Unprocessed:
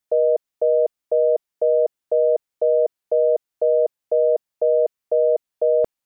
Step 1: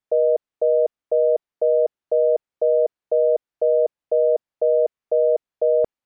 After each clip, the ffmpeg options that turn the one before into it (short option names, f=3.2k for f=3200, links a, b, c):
-af "aemphasis=mode=reproduction:type=75kf"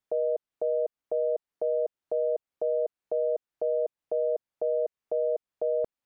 -af "alimiter=limit=-20.5dB:level=0:latency=1:release=231"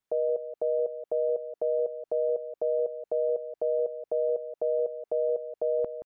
-filter_complex "[0:a]asplit=2[a][b];[b]adelay=174.9,volume=-11dB,highshelf=f=4k:g=-3.94[c];[a][c]amix=inputs=2:normalize=0"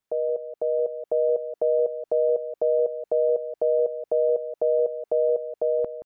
-af "dynaudnorm=f=350:g=5:m=4dB,volume=1.5dB"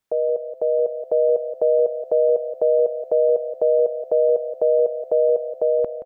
-filter_complex "[0:a]asplit=4[a][b][c][d];[b]adelay=257,afreqshift=35,volume=-24dB[e];[c]adelay=514,afreqshift=70,volume=-29.5dB[f];[d]adelay=771,afreqshift=105,volume=-35dB[g];[a][e][f][g]amix=inputs=4:normalize=0,volume=4.5dB"